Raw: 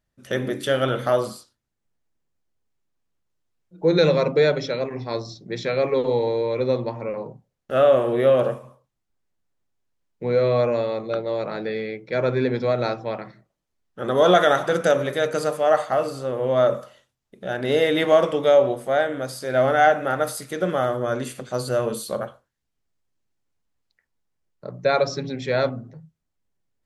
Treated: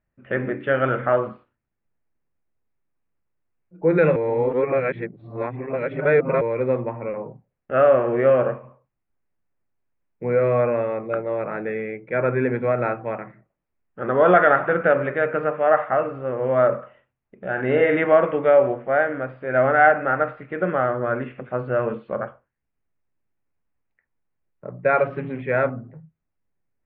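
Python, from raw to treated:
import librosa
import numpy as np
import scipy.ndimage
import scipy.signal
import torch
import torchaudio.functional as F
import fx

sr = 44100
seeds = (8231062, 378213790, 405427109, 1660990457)

y = fx.doubler(x, sr, ms=47.0, db=-5.5, at=(17.55, 17.97), fade=0.02)
y = fx.crossing_spikes(y, sr, level_db=-23.5, at=(24.96, 25.42))
y = fx.edit(y, sr, fx.reverse_span(start_s=4.16, length_s=2.25), tone=tone)
y = fx.dynamic_eq(y, sr, hz=1500.0, q=1.9, threshold_db=-39.0, ratio=4.0, max_db=5)
y = scipy.signal.sosfilt(scipy.signal.butter(8, 2600.0, 'lowpass', fs=sr, output='sos'), y)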